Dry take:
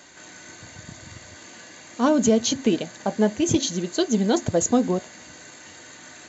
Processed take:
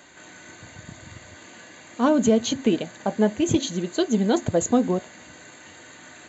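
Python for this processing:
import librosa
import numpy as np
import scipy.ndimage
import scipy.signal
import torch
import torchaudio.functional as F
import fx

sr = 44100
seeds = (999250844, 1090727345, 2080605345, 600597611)

y = fx.peak_eq(x, sr, hz=5400.0, db=-12.5, octaves=0.43)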